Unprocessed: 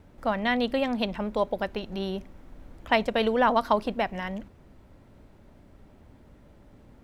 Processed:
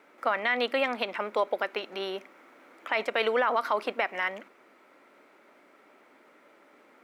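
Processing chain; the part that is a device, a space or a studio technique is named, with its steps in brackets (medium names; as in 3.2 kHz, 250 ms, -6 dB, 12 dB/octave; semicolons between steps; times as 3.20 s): laptop speaker (high-pass 320 Hz 24 dB/octave; peaking EQ 1.3 kHz +9 dB 0.5 oct; peaking EQ 2.2 kHz +10 dB 0.52 oct; peak limiter -15.5 dBFS, peak gain reduction 12.5 dB)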